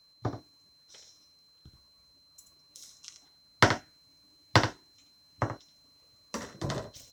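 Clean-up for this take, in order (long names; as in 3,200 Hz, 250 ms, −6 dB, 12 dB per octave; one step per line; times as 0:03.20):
clipped peaks rebuilt −8.5 dBFS
notch filter 4,100 Hz, Q 30
echo removal 79 ms −9.5 dB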